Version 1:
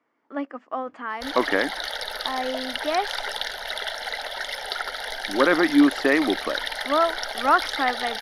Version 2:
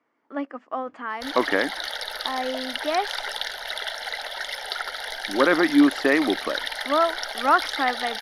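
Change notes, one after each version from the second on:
background: add low shelf 480 Hz -6.5 dB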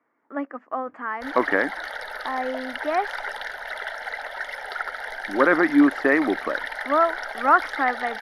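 master: add resonant high shelf 2500 Hz -10 dB, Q 1.5

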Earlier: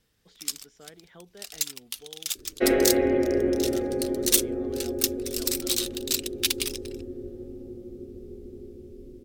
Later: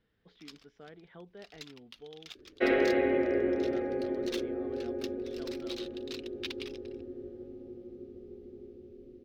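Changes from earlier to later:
first sound -6.0 dB; second sound: add tilt +3 dB/oct; master: add air absorption 280 m

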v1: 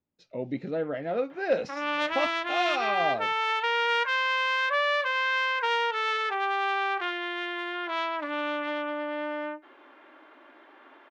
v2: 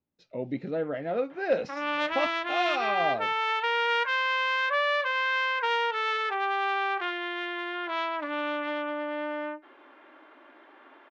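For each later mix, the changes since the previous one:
master: add air absorption 58 m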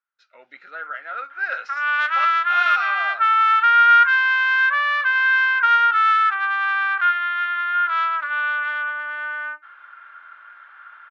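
master: add resonant high-pass 1400 Hz, resonance Q 9.1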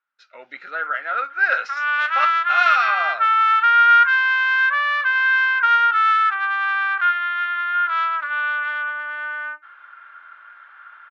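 speech +7.0 dB

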